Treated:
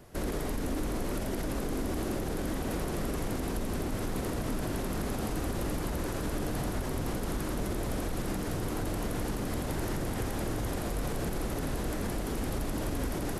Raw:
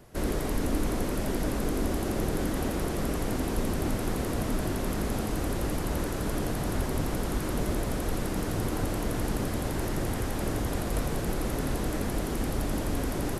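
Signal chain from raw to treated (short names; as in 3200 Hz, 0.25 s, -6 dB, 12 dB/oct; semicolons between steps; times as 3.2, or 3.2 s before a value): on a send: flutter echo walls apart 7.8 m, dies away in 0.24 s; on the sum: limiter -24 dBFS, peak gain reduction 8.5 dB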